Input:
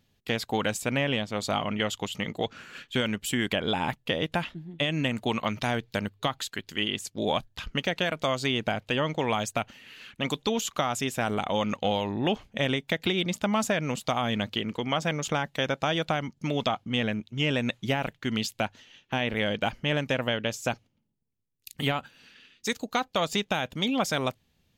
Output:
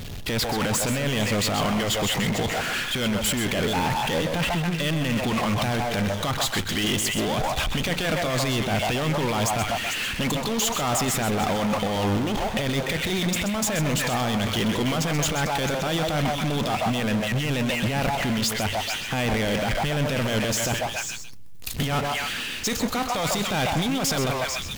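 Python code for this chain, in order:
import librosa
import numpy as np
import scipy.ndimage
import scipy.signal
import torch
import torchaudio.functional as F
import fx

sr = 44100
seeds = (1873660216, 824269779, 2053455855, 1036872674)

p1 = fx.low_shelf(x, sr, hz=90.0, db=10.5)
p2 = p1 + fx.echo_stepped(p1, sr, ms=148, hz=820.0, octaves=1.4, feedback_pct=70, wet_db=-8.5, dry=0)
p3 = fx.over_compress(p2, sr, threshold_db=-29.0, ratio=-0.5)
p4 = fx.power_curve(p3, sr, exponent=0.35)
p5 = p4 + 10.0 ** (-9.0 / 20.0) * np.pad(p4, (int(129 * sr / 1000.0), 0))[:len(p4)]
y = p5 * 10.0 ** (-5.0 / 20.0)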